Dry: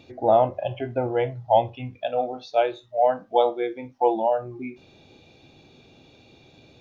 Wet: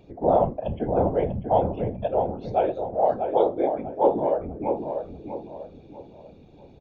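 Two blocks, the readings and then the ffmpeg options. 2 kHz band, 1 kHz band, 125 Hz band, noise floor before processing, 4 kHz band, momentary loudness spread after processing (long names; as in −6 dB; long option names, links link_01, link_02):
can't be measured, −1.5 dB, +3.5 dB, −55 dBFS, below −10 dB, 14 LU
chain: -filter_complex "[0:a]tiltshelf=frequency=930:gain=9,bandreject=frequency=50:width_type=h:width=6,bandreject=frequency=100:width_type=h:width=6,bandreject=frequency=150:width_type=h:width=6,bandreject=frequency=200:width_type=h:width=6,bandreject=frequency=250:width_type=h:width=6,bandreject=frequency=300:width_type=h:width=6,bandreject=frequency=350:width_type=h:width=6,afftfilt=real='hypot(re,im)*cos(2*PI*random(0))':imag='hypot(re,im)*sin(2*PI*random(1))':win_size=512:overlap=0.75,asplit=2[link_01][link_02];[link_02]adelay=643,lowpass=frequency=1800:poles=1,volume=-5.5dB,asplit=2[link_03][link_04];[link_04]adelay=643,lowpass=frequency=1800:poles=1,volume=0.38,asplit=2[link_05][link_06];[link_06]adelay=643,lowpass=frequency=1800:poles=1,volume=0.38,asplit=2[link_07][link_08];[link_08]adelay=643,lowpass=frequency=1800:poles=1,volume=0.38,asplit=2[link_09][link_10];[link_10]adelay=643,lowpass=frequency=1800:poles=1,volume=0.38[link_11];[link_03][link_05][link_07][link_09][link_11]amix=inputs=5:normalize=0[link_12];[link_01][link_12]amix=inputs=2:normalize=0,volume=1.5dB"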